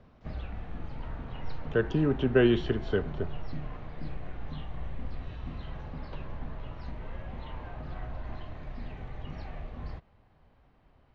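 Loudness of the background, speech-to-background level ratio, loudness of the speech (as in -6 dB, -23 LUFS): -42.0 LUFS, 14.0 dB, -28.0 LUFS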